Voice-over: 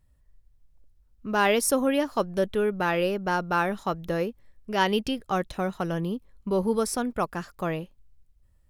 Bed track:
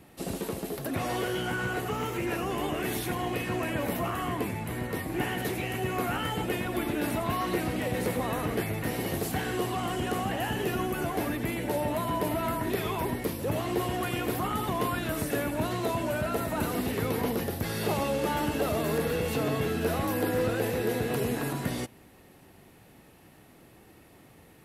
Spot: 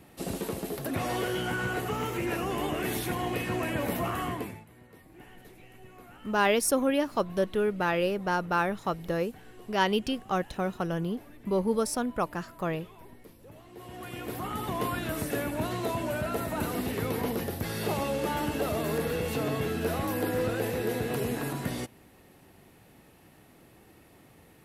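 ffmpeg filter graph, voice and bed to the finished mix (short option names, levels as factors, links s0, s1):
-filter_complex "[0:a]adelay=5000,volume=0.794[s0];[1:a]volume=9.44,afade=t=out:st=4.22:d=0.44:silence=0.0891251,afade=t=in:st=13.72:d=1.13:silence=0.105925[s1];[s0][s1]amix=inputs=2:normalize=0"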